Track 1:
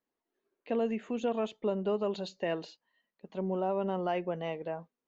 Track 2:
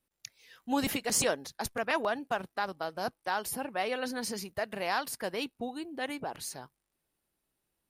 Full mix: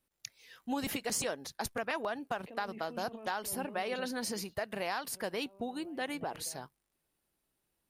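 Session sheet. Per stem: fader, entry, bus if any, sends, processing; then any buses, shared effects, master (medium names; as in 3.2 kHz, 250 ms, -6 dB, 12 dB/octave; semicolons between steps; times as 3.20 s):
3.94 s -7 dB -> 4.44 s -20 dB, 1.80 s, no send, compressor with a negative ratio -38 dBFS, ratio -1
+0.5 dB, 0.00 s, no send, none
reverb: none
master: compression 4:1, threshold -32 dBFS, peak gain reduction 7.5 dB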